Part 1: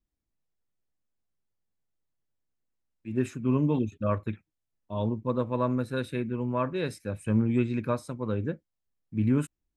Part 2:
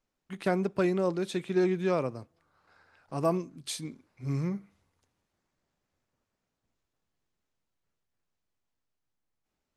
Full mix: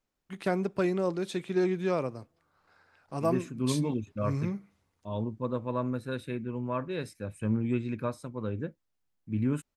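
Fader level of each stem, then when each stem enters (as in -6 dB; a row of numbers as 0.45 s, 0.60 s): -4.0 dB, -1.0 dB; 0.15 s, 0.00 s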